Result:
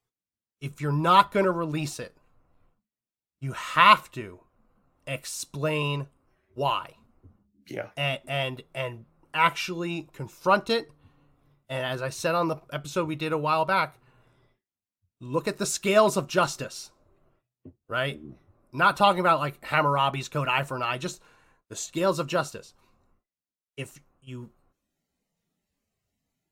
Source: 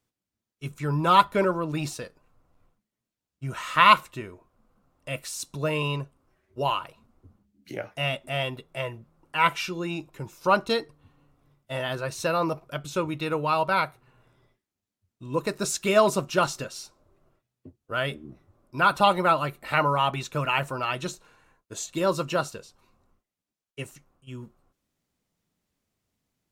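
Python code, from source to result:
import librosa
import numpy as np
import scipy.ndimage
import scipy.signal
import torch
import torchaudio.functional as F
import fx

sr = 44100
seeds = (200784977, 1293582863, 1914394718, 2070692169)

y = fx.noise_reduce_blind(x, sr, reduce_db=11)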